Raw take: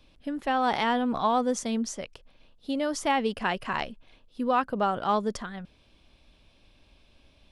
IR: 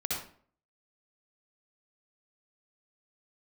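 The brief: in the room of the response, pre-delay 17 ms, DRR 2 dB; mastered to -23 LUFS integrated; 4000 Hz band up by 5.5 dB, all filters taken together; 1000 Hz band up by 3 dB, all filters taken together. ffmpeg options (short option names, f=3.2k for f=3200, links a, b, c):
-filter_complex "[0:a]equalizer=f=1k:t=o:g=3.5,equalizer=f=4k:t=o:g=7.5,asplit=2[a][b];[1:a]atrim=start_sample=2205,adelay=17[c];[b][c]afir=irnorm=-1:irlink=0,volume=-7dB[d];[a][d]amix=inputs=2:normalize=0,volume=1dB"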